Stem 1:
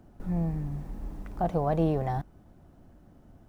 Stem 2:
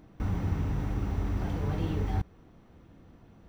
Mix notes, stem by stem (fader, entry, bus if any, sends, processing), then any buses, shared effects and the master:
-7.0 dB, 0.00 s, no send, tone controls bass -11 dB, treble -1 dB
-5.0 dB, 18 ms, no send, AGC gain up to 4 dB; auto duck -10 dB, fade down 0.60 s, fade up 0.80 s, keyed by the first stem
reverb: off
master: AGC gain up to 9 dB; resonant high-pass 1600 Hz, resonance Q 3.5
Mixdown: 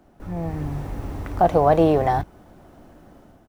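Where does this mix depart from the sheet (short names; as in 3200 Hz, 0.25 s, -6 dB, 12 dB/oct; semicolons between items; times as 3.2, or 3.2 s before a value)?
stem 1 -7.0 dB -> +4.0 dB; master: missing resonant high-pass 1600 Hz, resonance Q 3.5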